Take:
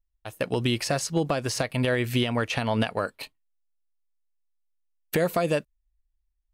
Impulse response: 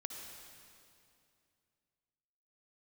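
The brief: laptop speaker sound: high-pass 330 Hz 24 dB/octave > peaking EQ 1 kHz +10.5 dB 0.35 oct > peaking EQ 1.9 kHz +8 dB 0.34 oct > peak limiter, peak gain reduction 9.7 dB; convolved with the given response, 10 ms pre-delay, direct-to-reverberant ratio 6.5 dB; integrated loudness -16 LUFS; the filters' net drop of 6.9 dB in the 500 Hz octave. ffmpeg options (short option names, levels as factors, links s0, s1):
-filter_complex "[0:a]equalizer=f=500:t=o:g=-9,asplit=2[s0][s1];[1:a]atrim=start_sample=2205,adelay=10[s2];[s1][s2]afir=irnorm=-1:irlink=0,volume=0.596[s3];[s0][s3]amix=inputs=2:normalize=0,highpass=f=330:w=0.5412,highpass=f=330:w=1.3066,equalizer=f=1000:t=o:w=0.35:g=10.5,equalizer=f=1900:t=o:w=0.34:g=8,volume=5.96,alimiter=limit=0.596:level=0:latency=1"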